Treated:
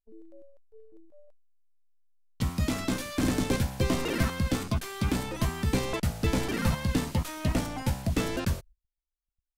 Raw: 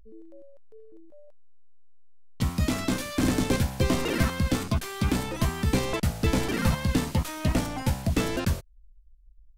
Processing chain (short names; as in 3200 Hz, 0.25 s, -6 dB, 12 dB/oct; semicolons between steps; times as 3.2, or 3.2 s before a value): gate -45 dBFS, range -35 dB; gain -2.5 dB